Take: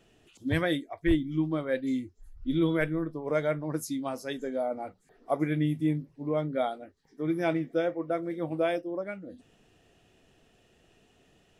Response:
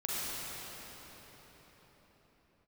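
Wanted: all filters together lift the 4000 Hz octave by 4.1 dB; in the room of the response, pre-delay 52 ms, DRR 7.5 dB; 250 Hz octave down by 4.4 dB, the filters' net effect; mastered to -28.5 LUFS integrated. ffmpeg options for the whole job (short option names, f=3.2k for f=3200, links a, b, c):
-filter_complex "[0:a]equalizer=f=250:t=o:g=-6.5,equalizer=f=4k:t=o:g=5,asplit=2[a][b];[1:a]atrim=start_sample=2205,adelay=52[c];[b][c]afir=irnorm=-1:irlink=0,volume=-14dB[d];[a][d]amix=inputs=2:normalize=0,volume=3.5dB"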